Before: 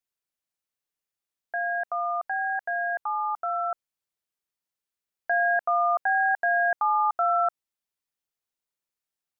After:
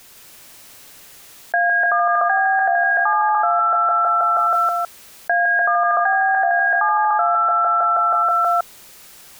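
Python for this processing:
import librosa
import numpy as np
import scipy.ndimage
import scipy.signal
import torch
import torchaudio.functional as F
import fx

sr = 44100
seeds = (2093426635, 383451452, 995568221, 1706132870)

y = fx.echo_feedback(x, sr, ms=160, feedback_pct=53, wet_db=-4.0)
y = fx.env_flatten(y, sr, amount_pct=100)
y = y * 10.0 ** (4.0 / 20.0)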